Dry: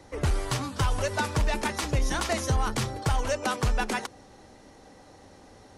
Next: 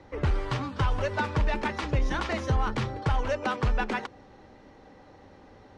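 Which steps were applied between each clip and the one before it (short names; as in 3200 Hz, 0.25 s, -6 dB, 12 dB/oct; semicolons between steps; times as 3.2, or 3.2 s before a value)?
LPF 3100 Hz 12 dB/oct; notch 690 Hz, Q 12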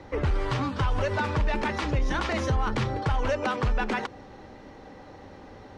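limiter -24.5 dBFS, peak gain reduction 7 dB; gain +6 dB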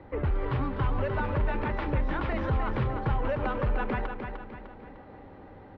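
air absorption 450 m; on a send: feedback echo 0.302 s, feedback 44%, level -6.5 dB; on the sum: gain -2 dB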